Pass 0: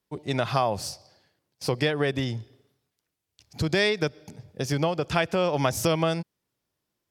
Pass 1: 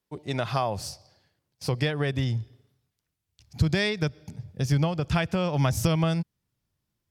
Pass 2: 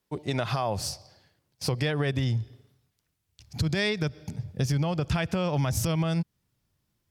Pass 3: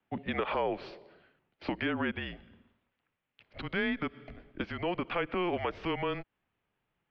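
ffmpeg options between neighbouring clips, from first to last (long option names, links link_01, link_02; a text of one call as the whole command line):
ffmpeg -i in.wav -af "asubboost=boost=4.5:cutoff=180,volume=-2.5dB" out.wav
ffmpeg -i in.wav -af "alimiter=limit=-18.5dB:level=0:latency=1:release=82,acompressor=threshold=-30dB:ratio=2,volume=4.5dB" out.wav
ffmpeg -i in.wav -filter_complex "[0:a]highpass=frequency=280:width_type=q:width=0.5412,highpass=frequency=280:width_type=q:width=1.307,lowpass=frequency=3100:width_type=q:width=0.5176,lowpass=frequency=3100:width_type=q:width=0.7071,lowpass=frequency=3100:width_type=q:width=1.932,afreqshift=-180,acrossover=split=230|900[link_01][link_02][link_03];[link_01]acompressor=threshold=-47dB:ratio=4[link_04];[link_02]acompressor=threshold=-34dB:ratio=4[link_05];[link_03]acompressor=threshold=-36dB:ratio=4[link_06];[link_04][link_05][link_06]amix=inputs=3:normalize=0,volume=3dB" out.wav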